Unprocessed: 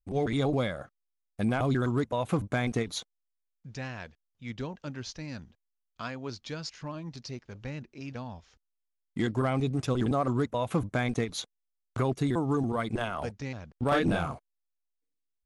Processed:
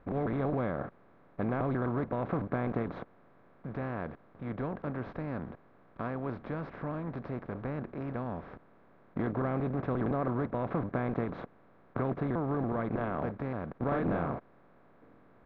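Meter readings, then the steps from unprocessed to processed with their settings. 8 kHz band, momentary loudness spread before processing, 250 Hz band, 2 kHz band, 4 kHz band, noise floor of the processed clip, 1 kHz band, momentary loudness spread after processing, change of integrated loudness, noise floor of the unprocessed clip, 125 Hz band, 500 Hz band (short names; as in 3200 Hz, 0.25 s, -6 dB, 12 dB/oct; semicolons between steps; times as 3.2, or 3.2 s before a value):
under -35 dB, 15 LU, -2.5 dB, -6.0 dB, under -20 dB, -61 dBFS, -2.5 dB, 11 LU, -3.5 dB, -82 dBFS, -3.5 dB, -2.0 dB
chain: per-bin compression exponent 0.4; Bessel low-pass 1400 Hz, order 4; gain -8 dB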